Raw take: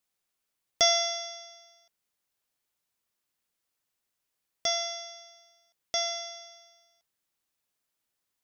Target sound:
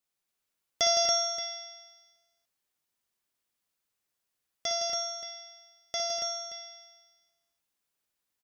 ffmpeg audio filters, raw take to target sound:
ffmpeg -i in.wav -af "aecho=1:1:59|162|245|281|291|576:0.501|0.447|0.335|0.668|0.112|0.224,volume=-4dB" out.wav

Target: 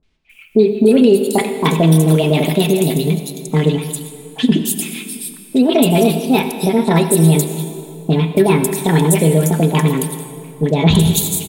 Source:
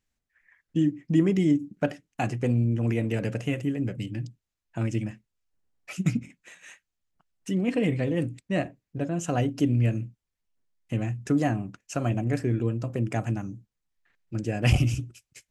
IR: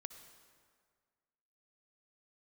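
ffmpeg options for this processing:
-filter_complex "[0:a]aemphasis=mode=production:type=50kf,aecho=1:1:6.2:0.33,bandreject=frequency=75.57:width_type=h:width=4,bandreject=frequency=151.14:width_type=h:width=4,bandreject=frequency=226.71:width_type=h:width=4,bandreject=frequency=302.28:width_type=h:width=4,bandreject=frequency=377.85:width_type=h:width=4,bandreject=frequency=453.42:width_type=h:width=4,bandreject=frequency=528.99:width_type=h:width=4,bandreject=frequency=604.56:width_type=h:width=4,bandreject=frequency=680.13:width_type=h:width=4,bandreject=frequency=755.7:width_type=h:width=4,bandreject=frequency=831.27:width_type=h:width=4,bandreject=frequency=906.84:width_type=h:width=4,bandreject=frequency=982.41:width_type=h:width=4,bandreject=frequency=1057.98:width_type=h:width=4,bandreject=frequency=1133.55:width_type=h:width=4,bandreject=frequency=1209.12:width_type=h:width=4,bandreject=frequency=1284.69:width_type=h:width=4,bandreject=frequency=1360.26:width_type=h:width=4,bandreject=frequency=1435.83:width_type=h:width=4,bandreject=frequency=1511.4:width_type=h:width=4,bandreject=frequency=1586.97:width_type=h:width=4,bandreject=frequency=1662.54:width_type=h:width=4,bandreject=frequency=1738.11:width_type=h:width=4,bandreject=frequency=1813.68:width_type=h:width=4,bandreject=frequency=1889.25:width_type=h:width=4,bandreject=frequency=1964.82:width_type=h:width=4,bandreject=frequency=2040.39:width_type=h:width=4,bandreject=frequency=2115.96:width_type=h:width=4,bandreject=frequency=2191.53:width_type=h:width=4,bandreject=frequency=2267.1:width_type=h:width=4,bandreject=frequency=2342.67:width_type=h:width=4,bandreject=frequency=2418.24:width_type=h:width=4,bandreject=frequency=2493.81:width_type=h:width=4,bandreject=frequency=2569.38:width_type=h:width=4,asplit=2[link_01][link_02];[link_02]acompressor=threshold=-31dB:ratio=6,volume=1.5dB[link_03];[link_01][link_03]amix=inputs=2:normalize=0,acrossover=split=680|3200[link_04][link_05][link_06];[link_05]adelay=40[link_07];[link_06]adelay=400[link_08];[link_04][link_07][link_08]amix=inputs=3:normalize=0,asplit=2[link_09][link_10];[1:a]atrim=start_sample=2205,asetrate=25578,aresample=44100,highshelf=frequency=4800:gain=6[link_11];[link_10][link_11]afir=irnorm=-1:irlink=0,volume=9.5dB[link_12];[link_09][link_12]amix=inputs=2:normalize=0,asetrate=59535,aresample=44100,alimiter=level_in=1dB:limit=-1dB:release=50:level=0:latency=1,volume=-1dB"

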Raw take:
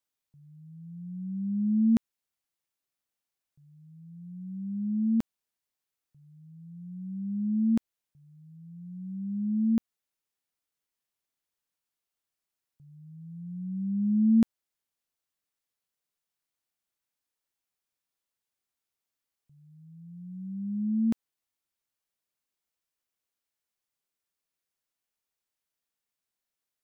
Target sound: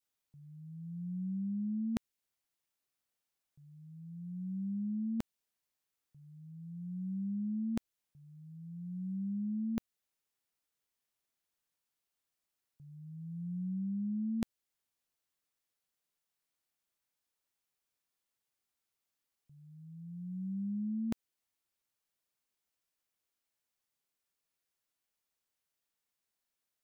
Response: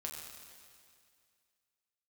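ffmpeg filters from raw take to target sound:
-af "adynamicequalizer=threshold=0.00316:dfrequency=970:dqfactor=0.94:tfrequency=970:tqfactor=0.94:attack=5:release=100:ratio=0.375:range=2.5:mode=cutabove:tftype=bell,areverse,acompressor=threshold=-34dB:ratio=8,areverse"

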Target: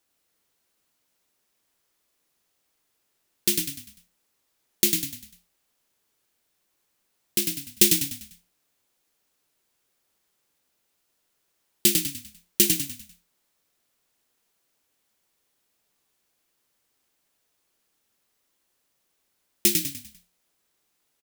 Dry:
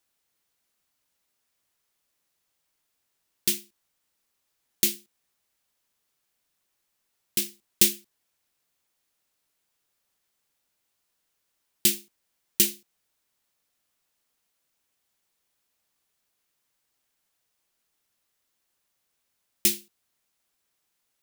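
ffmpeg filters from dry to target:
ffmpeg -i in.wav -filter_complex "[0:a]equalizer=frequency=360:width_type=o:width=1.5:gain=4.5,asplit=6[link_01][link_02][link_03][link_04][link_05][link_06];[link_02]adelay=99,afreqshift=-35,volume=-4.5dB[link_07];[link_03]adelay=198,afreqshift=-70,volume=-12.2dB[link_08];[link_04]adelay=297,afreqshift=-105,volume=-20dB[link_09];[link_05]adelay=396,afreqshift=-140,volume=-27.7dB[link_10];[link_06]adelay=495,afreqshift=-175,volume=-35.5dB[link_11];[link_01][link_07][link_08][link_09][link_10][link_11]amix=inputs=6:normalize=0,volume=1.5dB" out.wav

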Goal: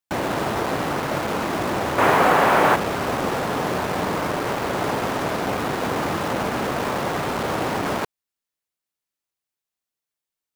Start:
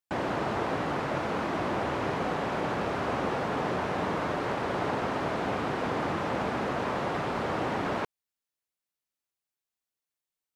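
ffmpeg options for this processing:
ffmpeg -i in.wav -filter_complex "[0:a]asettb=1/sr,asplit=3[link_01][link_02][link_03];[link_01]atrim=end=1.984[link_04];[link_02]atrim=start=1.98:end=2.76,asetpts=PTS-STARTPTS,afade=type=in:duration=0.004:curve=qsin,afade=type=out:start_time=0.776:duration=0.004:curve=qsin,equalizer=frequency=1300:width=0.32:gain=11[link_05];[link_03]atrim=start=2.756[link_06];[link_04][link_05]acrossfade=duration=0.004:curve1=hsin:curve2=qsin[link_07];[link_07][link_06]acrossfade=duration=0.004:curve1=qsin:curve2=hsin,asplit=2[link_08][link_09];[link_09]acrusher=bits=4:mix=0:aa=0.000001,volume=-5dB[link_10];[link_08][link_10]amix=inputs=2:normalize=0,volume=2dB" out.wav

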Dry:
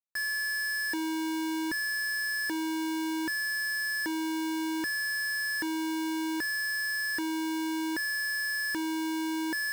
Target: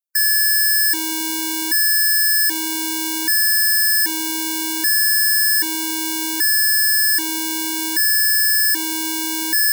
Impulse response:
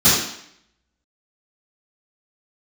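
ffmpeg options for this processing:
-af "crystalizer=i=8:c=0,afftdn=noise_reduction=18:noise_floor=-34,volume=2dB"

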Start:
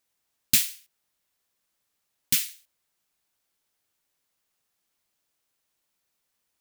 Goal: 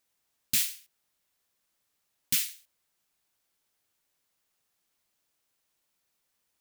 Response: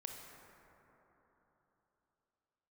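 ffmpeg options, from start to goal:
-af "alimiter=limit=-13.5dB:level=0:latency=1:release=61"

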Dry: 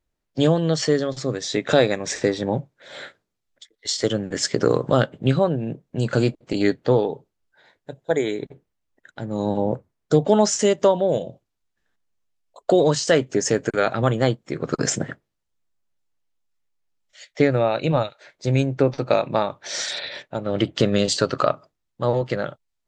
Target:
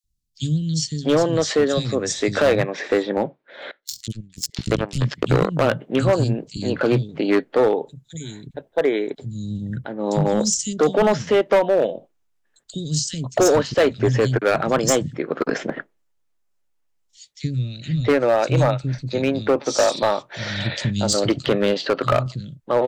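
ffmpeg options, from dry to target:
ffmpeg -i in.wav -filter_complex "[0:a]asettb=1/sr,asplit=3[link_01][link_02][link_03];[link_01]atrim=end=3.034[link_04];[link_02]atrim=start=3.03:end=4.98,asetpts=PTS-STARTPTS,afade=type=in:duration=0.004:curve=qsin,afade=type=out:start_time=1.946:duration=0.004:curve=qsin,aeval=exprs='0.668*(cos(1*acos(clip(val(0)/0.668,-1,1)))-cos(1*PI/2))+0.0596*(cos(5*acos(clip(val(0)/0.668,-1,1)))-cos(5*PI/2))+0.133*(cos(7*acos(clip(val(0)/0.668,-1,1)))-cos(7*PI/2))':channel_layout=same[link_05];[link_03]atrim=start=4.976[link_06];[link_04][link_05]acrossfade=duration=0.004:curve1=hsin:curve2=qsin[link_07];[link_07][link_06]acrossfade=duration=0.004:curve1=qsin:curve2=hsin,acrossover=split=200|3800[link_08][link_09][link_10];[link_08]adelay=40[link_11];[link_09]adelay=680[link_12];[link_11][link_12][link_10]amix=inputs=3:normalize=0,volume=15dB,asoftclip=hard,volume=-15dB,volume=4dB" out.wav

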